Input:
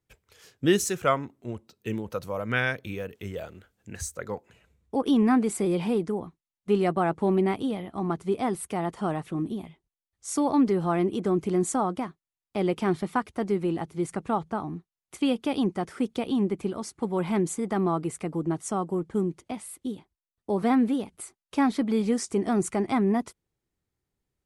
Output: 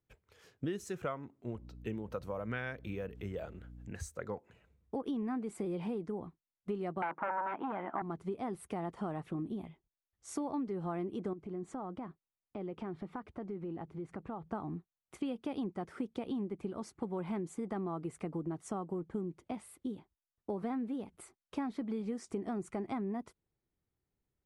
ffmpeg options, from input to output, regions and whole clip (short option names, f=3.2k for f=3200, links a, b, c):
-filter_complex "[0:a]asettb=1/sr,asplit=3[a][b][c];[a]atrim=end=1.554[d];[b]atrim=start=1.55:end=3.92,asetpts=PTS-STARTPTS,afade=t=in:d=0.004:c=qsin,afade=t=out:st=2.366:d=0.004:c=qsin,highpass=51,aeval=exprs='val(0)+0.00355*(sin(2*PI*60*n/s)+sin(2*PI*2*60*n/s)/2+sin(2*PI*3*60*n/s)/3+sin(2*PI*4*60*n/s)/4+sin(2*PI*5*60*n/s)/5)':c=same,acompressor=mode=upward:threshold=-40dB:ratio=2.5:attack=3.2:release=140:knee=2.83:detection=peak[e];[c]atrim=start=3.916[f];[d][e]acrossfade=d=0.004:c1=hsin:c2=qsin[g];[g][f]acrossfade=d=0.004:c1=qsin:c2=hsin,asettb=1/sr,asplit=3[h][i][j];[h]atrim=end=7.024[k];[i]atrim=start=7.02:end=8.02,asetpts=PTS-STARTPTS,afade=t=in:d=0.004:c=qsin,afade=t=out:st=0.996:d=0.004:c=qsin,aeval=exprs='0.2*sin(PI/2*3.55*val(0)/0.2)':c=same,highpass=400,equalizer=f=450:t=q:w=4:g=-7,equalizer=f=940:t=q:w=4:g=8,equalizer=f=1.5k:t=q:w=4:g=7,lowpass=f=2.3k:w=0.5412,lowpass=f=2.3k:w=1.3066[l];[j]atrim=start=8.016[m];[k][l]acrossfade=d=0.004:c1=hsin:c2=qsin[n];[n][m]acrossfade=d=0.004:c1=qsin:c2=hsin,asettb=1/sr,asplit=3[o][p][q];[o]atrim=end=11.334[r];[p]atrim=start=11.33:end=14.49,asetpts=PTS-STARTPTS,afade=t=in:d=0.004:c=qsin,afade=t=out:st=3.156:d=0.004:c=qsin,aemphasis=mode=reproduction:type=75fm,acompressor=threshold=-37dB:ratio=3:attack=3.2:release=140:knee=1:detection=peak[s];[q]atrim=start=14.486[t];[r][s]acrossfade=d=0.004:c1=hsin:c2=qsin[u];[u][t]acrossfade=d=0.004:c1=qsin:c2=hsin,highshelf=f=3.1k:g=-11.5,acompressor=threshold=-31dB:ratio=6,volume=-3.5dB"